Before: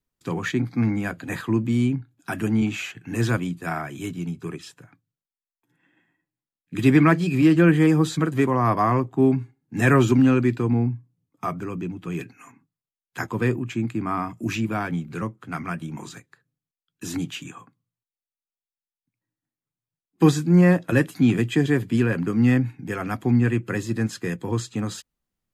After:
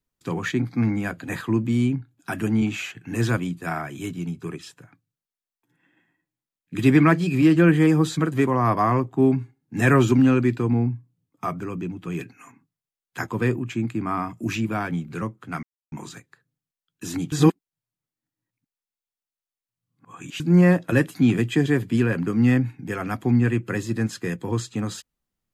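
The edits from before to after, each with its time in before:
15.63–15.92 s: mute
17.32–20.40 s: reverse

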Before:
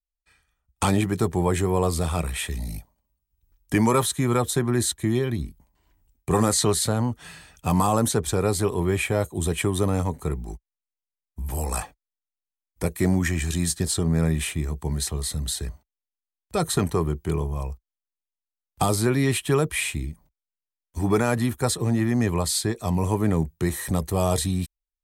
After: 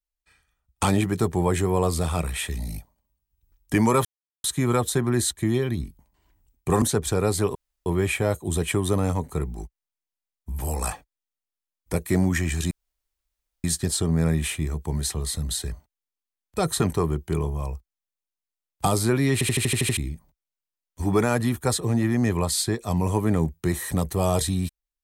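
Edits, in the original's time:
4.05 s: insert silence 0.39 s
6.43–8.03 s: delete
8.76 s: insert room tone 0.31 s
13.61 s: insert room tone 0.93 s
19.30 s: stutter in place 0.08 s, 8 plays

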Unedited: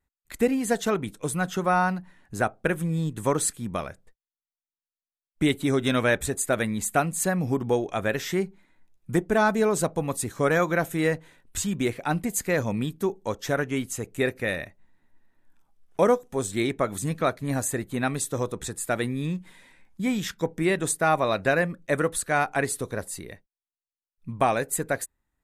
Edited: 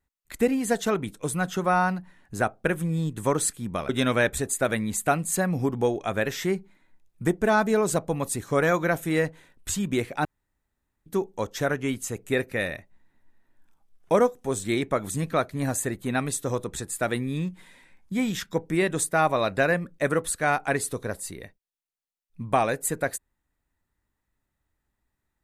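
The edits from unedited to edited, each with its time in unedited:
3.89–5.77 s: delete
12.13–12.94 s: room tone

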